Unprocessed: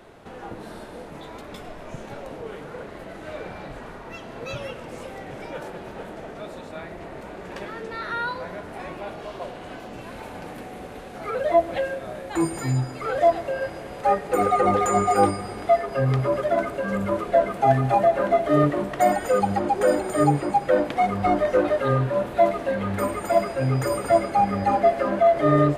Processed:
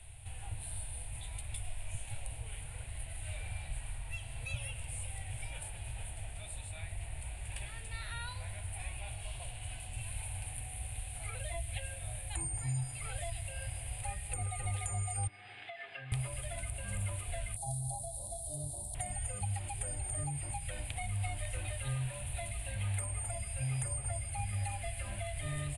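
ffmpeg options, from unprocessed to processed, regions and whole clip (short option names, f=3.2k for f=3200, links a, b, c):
-filter_complex "[0:a]asettb=1/sr,asplit=3[a][b][c];[a]atrim=end=15.274[d];[b]atrim=start=15.27:end=16.12,asetpts=PTS-STARTPTS,afade=t=in:d=0.004:c=qsin,afade=t=out:st=0.846:d=0.004:c=qsin,acompressor=threshold=-23dB:ratio=3:attack=3.2:release=140:knee=1:detection=peak,highpass=f=220:w=0.5412,highpass=f=220:w=1.3066,equalizer=f=220:t=q:w=4:g=-8,equalizer=f=580:t=q:w=4:g=-8,equalizer=f=950:t=q:w=4:g=-6,equalizer=f=1.7k:t=q:w=4:g=8,equalizer=f=3.4k:t=q:w=4:g=3,lowpass=f=3.8k:w=0.5412,lowpass=f=3.8k:w=1.3066[e];[c]atrim=start=16.116[f];[d][e]acrossfade=d=0.004:c1=hsin:c2=qsin[g];[g][f]acrossfade=d=0.004:c1=qsin:c2=hsin,asettb=1/sr,asplit=3[h][i][j];[h]atrim=end=17.564[k];[i]atrim=start=17.56:end=18.95,asetpts=PTS-STARTPTS,afade=t=in:d=0.004:c=qsin,afade=t=out:st=1.386:d=0.004:c=qsin,asuperstop=centerf=1900:order=12:qfactor=0.61,tiltshelf=f=1.1k:g=-8[l];[j]atrim=start=18.946[m];[k][l]acrossfade=d=0.004:c1=hsin:c2=qsin[n];[n][m]acrossfade=d=0.004:c1=qsin:c2=hsin,firequalizer=gain_entry='entry(110,0);entry(160,-25);entry(260,-27);entry(510,-22);entry(750,-16);entry(1200,-29);entry(2500,-9);entry(5800,-22);entry(9400,12);entry(14000,-30)':delay=0.05:min_phase=1,acrossover=split=240|1600[o][p][q];[o]acompressor=threshold=-44dB:ratio=4[r];[p]acompressor=threshold=-48dB:ratio=4[s];[q]acompressor=threshold=-51dB:ratio=4[t];[r][s][t]amix=inputs=3:normalize=0,equalizer=f=430:w=0.8:g=-14,volume=9.5dB"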